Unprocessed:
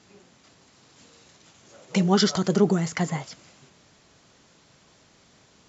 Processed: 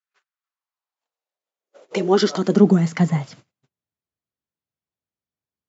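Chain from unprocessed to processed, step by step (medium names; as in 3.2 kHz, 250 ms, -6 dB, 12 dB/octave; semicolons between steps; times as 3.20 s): treble shelf 6.7 kHz -12 dB; gate -49 dBFS, range -40 dB; high-pass sweep 1.4 kHz -> 68 Hz, 0.27–4.10 s; trim +2 dB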